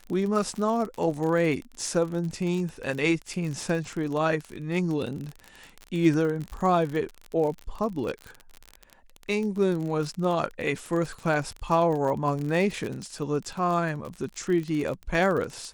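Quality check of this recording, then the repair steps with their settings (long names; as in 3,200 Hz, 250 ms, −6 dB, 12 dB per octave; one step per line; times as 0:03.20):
surface crackle 42 per second −30 dBFS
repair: click removal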